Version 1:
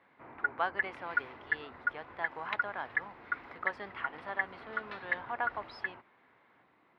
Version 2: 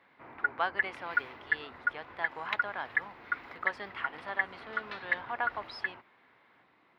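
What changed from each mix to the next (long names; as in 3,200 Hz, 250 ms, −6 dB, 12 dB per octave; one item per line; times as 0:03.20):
master: add high-shelf EQ 2,900 Hz +9.5 dB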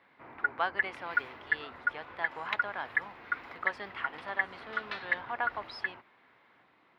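second sound +4.5 dB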